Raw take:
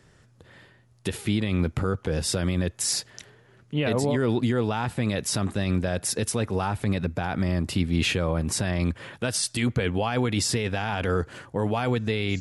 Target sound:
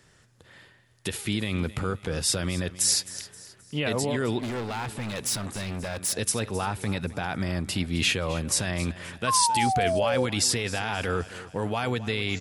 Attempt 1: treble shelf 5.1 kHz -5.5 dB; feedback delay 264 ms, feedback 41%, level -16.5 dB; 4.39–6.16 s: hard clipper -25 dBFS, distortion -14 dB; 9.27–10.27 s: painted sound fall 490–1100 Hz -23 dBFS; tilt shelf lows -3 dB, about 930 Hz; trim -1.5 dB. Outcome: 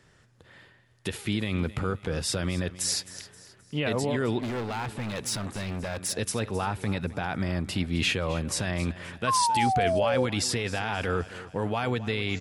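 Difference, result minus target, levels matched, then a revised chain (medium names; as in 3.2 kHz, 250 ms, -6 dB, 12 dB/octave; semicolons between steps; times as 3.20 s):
8 kHz band -4.0 dB
treble shelf 5.1 kHz +3 dB; feedback delay 264 ms, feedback 41%, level -16.5 dB; 4.39–6.16 s: hard clipper -25 dBFS, distortion -14 dB; 9.27–10.27 s: painted sound fall 490–1100 Hz -23 dBFS; tilt shelf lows -3 dB, about 930 Hz; trim -1.5 dB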